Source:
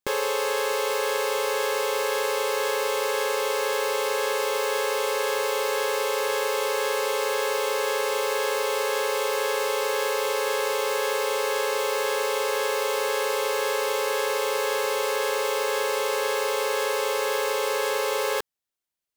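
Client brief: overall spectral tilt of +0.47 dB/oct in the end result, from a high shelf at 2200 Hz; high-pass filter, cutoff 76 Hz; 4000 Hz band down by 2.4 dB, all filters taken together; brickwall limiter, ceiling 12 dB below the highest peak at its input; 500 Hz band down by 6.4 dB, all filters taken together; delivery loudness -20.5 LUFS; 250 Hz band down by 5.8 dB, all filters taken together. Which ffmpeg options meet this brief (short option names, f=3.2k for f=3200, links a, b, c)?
-af "highpass=76,equalizer=f=250:t=o:g=-3.5,equalizer=f=500:t=o:g=-6.5,highshelf=f=2.2k:g=3,equalizer=f=4k:t=o:g=-6,volume=13dB,alimiter=limit=-10dB:level=0:latency=1"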